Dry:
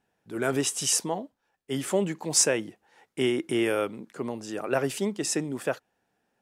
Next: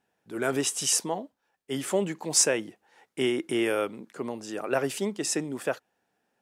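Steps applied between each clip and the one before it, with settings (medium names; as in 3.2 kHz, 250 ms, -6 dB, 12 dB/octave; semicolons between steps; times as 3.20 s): bass shelf 110 Hz -9.5 dB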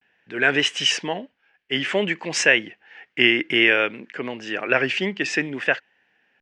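low-pass 5.4 kHz 24 dB/octave; vibrato 0.55 Hz 77 cents; high-order bell 2.2 kHz +14 dB 1.2 oct; trim +3.5 dB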